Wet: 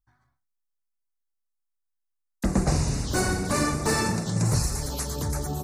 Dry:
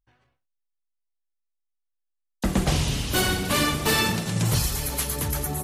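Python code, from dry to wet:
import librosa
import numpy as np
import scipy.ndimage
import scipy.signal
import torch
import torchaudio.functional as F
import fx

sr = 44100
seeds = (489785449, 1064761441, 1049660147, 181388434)

y = fx.env_phaser(x, sr, low_hz=470.0, high_hz=3200.0, full_db=-22.5)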